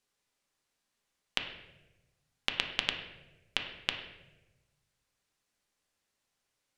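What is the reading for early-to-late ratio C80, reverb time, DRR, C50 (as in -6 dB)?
9.5 dB, 1.0 s, 3.5 dB, 7.5 dB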